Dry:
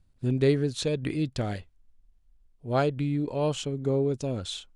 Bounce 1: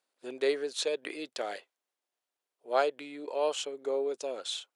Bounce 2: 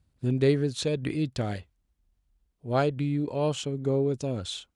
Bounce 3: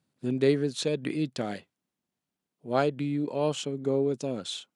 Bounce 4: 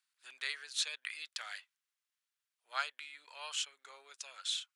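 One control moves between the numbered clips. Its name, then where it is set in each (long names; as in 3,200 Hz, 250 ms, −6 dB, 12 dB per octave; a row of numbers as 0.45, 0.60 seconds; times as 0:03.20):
high-pass filter, corner frequency: 440, 40, 160, 1,300 Hertz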